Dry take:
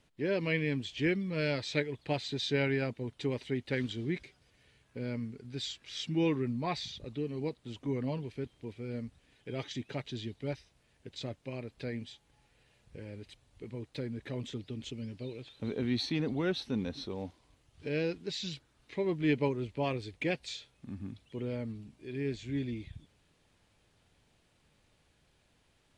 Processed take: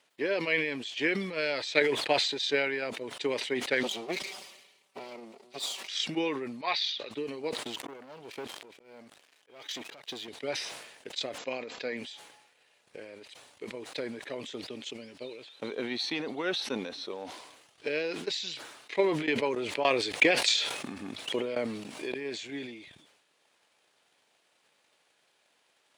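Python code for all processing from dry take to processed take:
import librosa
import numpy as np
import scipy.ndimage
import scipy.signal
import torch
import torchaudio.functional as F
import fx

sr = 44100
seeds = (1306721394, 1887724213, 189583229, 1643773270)

y = fx.chain(x, sr, fx.lower_of_two(delay_ms=5.2),
    fx.peak_eq(hz=1600.0, db=-10.5, octaves=0.42), at=(3.83, 5.88))
y = fx.chain(y, sr, fx.lowpass(hz=4400.0, slope=24),
    fx.tilt_eq(slope=3.5), at=(6.61, 7.11))
y = fx.chain(y, sr, fx.leveller(passes=3),
    fx.level_steps(step_db=9),
    fx.auto_swell(attack_ms=681.0), at=(7.63, 10.28))
y = fx.chain(y, sr, fx.brickwall_lowpass(high_hz=7700.0),
    fx.comb(ms=4.1, depth=0.32),
    fx.sustainer(db_per_s=25.0), at=(11.38, 11.97))
y = fx.chain(y, sr, fx.tremolo_shape(shape='saw_down', hz=3.5, depth_pct=80),
    fx.env_flatten(amount_pct=70), at=(18.99, 22.14))
y = fx.transient(y, sr, attack_db=8, sustain_db=-2)
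y = scipy.signal.sosfilt(scipy.signal.butter(2, 520.0, 'highpass', fs=sr, output='sos'), y)
y = fx.sustainer(y, sr, db_per_s=53.0)
y = F.gain(torch.from_numpy(y), 3.0).numpy()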